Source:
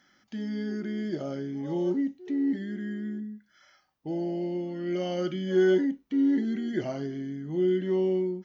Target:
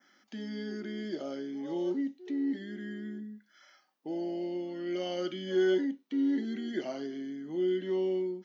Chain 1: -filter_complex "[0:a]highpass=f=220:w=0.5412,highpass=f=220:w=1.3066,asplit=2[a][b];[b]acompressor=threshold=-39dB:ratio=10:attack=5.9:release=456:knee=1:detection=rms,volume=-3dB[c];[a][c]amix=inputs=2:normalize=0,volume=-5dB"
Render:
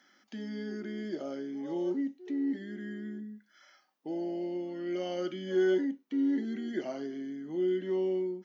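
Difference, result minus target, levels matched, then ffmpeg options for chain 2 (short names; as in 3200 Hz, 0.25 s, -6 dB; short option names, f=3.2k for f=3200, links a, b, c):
4000 Hz band -4.0 dB
-filter_complex "[0:a]highpass=f=220:w=0.5412,highpass=f=220:w=1.3066,adynamicequalizer=threshold=0.00141:dfrequency=3800:dqfactor=1.4:tfrequency=3800:tqfactor=1.4:attack=5:release=100:ratio=0.417:range=3:mode=boostabove:tftype=bell,asplit=2[a][b];[b]acompressor=threshold=-39dB:ratio=10:attack=5.9:release=456:knee=1:detection=rms,volume=-3dB[c];[a][c]amix=inputs=2:normalize=0,volume=-5dB"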